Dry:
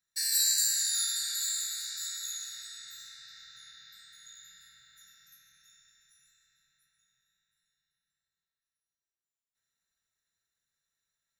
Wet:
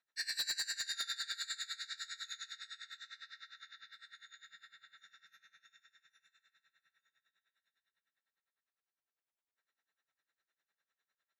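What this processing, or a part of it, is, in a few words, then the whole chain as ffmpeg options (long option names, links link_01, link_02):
helicopter radio: -af "highpass=400,lowpass=2600,aeval=exprs='val(0)*pow(10,-20*(0.5-0.5*cos(2*PI*9.9*n/s))/20)':channel_layout=same,asoftclip=type=hard:threshold=-39dB,volume=8.5dB"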